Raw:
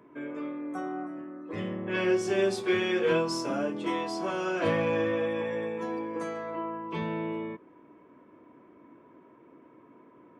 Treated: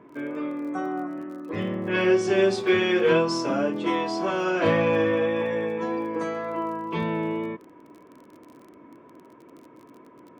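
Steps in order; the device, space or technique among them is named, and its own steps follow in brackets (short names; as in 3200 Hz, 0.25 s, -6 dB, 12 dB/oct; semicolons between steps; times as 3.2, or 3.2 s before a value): lo-fi chain (LPF 6300 Hz 12 dB/oct; wow and flutter 15 cents; crackle 27/s -46 dBFS); gain +5.5 dB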